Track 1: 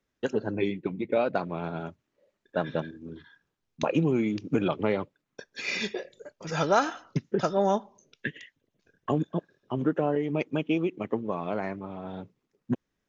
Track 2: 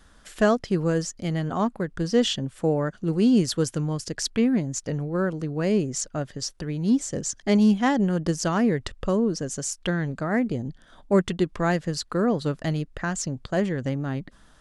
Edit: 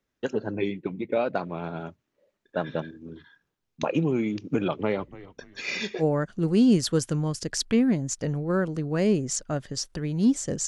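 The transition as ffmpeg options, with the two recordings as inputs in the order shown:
ffmpeg -i cue0.wav -i cue1.wav -filter_complex "[0:a]asplit=3[link_01][link_02][link_03];[link_01]afade=type=out:start_time=4.97:duration=0.02[link_04];[link_02]asplit=4[link_05][link_06][link_07][link_08];[link_06]adelay=289,afreqshift=-95,volume=-18dB[link_09];[link_07]adelay=578,afreqshift=-190,volume=-27.4dB[link_10];[link_08]adelay=867,afreqshift=-285,volume=-36.7dB[link_11];[link_05][link_09][link_10][link_11]amix=inputs=4:normalize=0,afade=type=in:start_time=4.97:duration=0.02,afade=type=out:start_time=6.04:duration=0.02[link_12];[link_03]afade=type=in:start_time=6.04:duration=0.02[link_13];[link_04][link_12][link_13]amix=inputs=3:normalize=0,apad=whole_dur=10.67,atrim=end=10.67,atrim=end=6.04,asetpts=PTS-STARTPTS[link_14];[1:a]atrim=start=2.63:end=7.32,asetpts=PTS-STARTPTS[link_15];[link_14][link_15]acrossfade=duration=0.06:curve1=tri:curve2=tri" out.wav

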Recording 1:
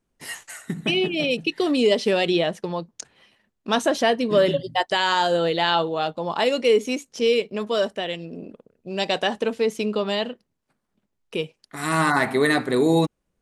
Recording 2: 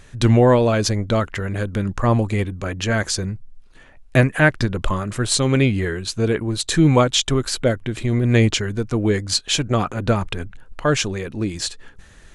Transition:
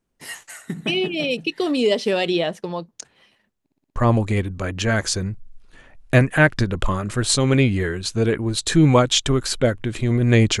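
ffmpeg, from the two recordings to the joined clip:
ffmpeg -i cue0.wav -i cue1.wav -filter_complex "[0:a]apad=whole_dur=10.6,atrim=end=10.6,asplit=6[link_01][link_02][link_03][link_04][link_05][link_06];[link_01]atrim=end=3.662[link_07];[link_02]atrim=start=3.598:end=3.662[link_08];[link_03]atrim=start=3.598:end=3.662[link_09];[link_04]atrim=start=3.598:end=3.662[link_10];[link_05]atrim=start=3.598:end=3.662[link_11];[link_06]atrim=start=3.598:end=3.662[link_12];[1:a]atrim=start=1.978:end=8.62[link_13];[link_07][link_08]acrossfade=duration=0.004:curve1=hsin:curve2=hsin[link_14];[link_14][link_09]acrossfade=duration=0.004:curve1=hsin:curve2=hsin[link_15];[link_15][link_10]acrossfade=duration=0.004:curve1=hsin:curve2=hsin[link_16];[link_16][link_11]acrossfade=duration=0.004:curve1=hsin:curve2=hsin[link_17];[link_17][link_12]acrossfade=duration=0.004:curve1=hsin:curve2=hsin[link_18];[link_18][link_13]acrossfade=duration=0.004:curve1=hsin:curve2=hsin" out.wav

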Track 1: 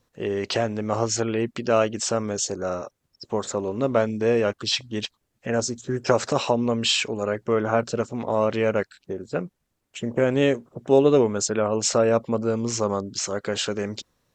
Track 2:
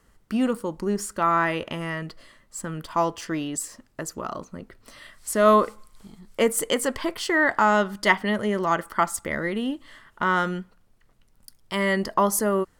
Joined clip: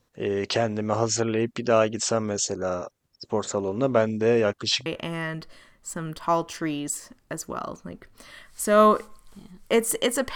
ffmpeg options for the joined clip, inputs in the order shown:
ffmpeg -i cue0.wav -i cue1.wav -filter_complex "[0:a]apad=whole_dur=10.35,atrim=end=10.35,atrim=end=4.862[link_01];[1:a]atrim=start=1.538:end=7.03[link_02];[link_01][link_02]acrossfade=duration=0.004:curve1=hsin:curve2=hsin" out.wav

